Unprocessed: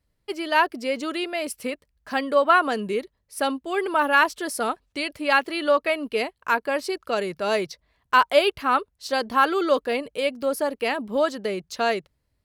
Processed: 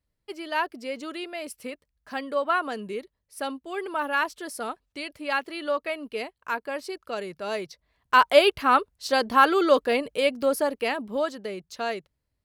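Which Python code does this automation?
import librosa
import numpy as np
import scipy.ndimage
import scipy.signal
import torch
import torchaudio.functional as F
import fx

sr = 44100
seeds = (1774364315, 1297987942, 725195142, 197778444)

y = fx.gain(x, sr, db=fx.line((7.69, -7.0), (8.3, 1.5), (10.45, 1.5), (11.45, -6.5)))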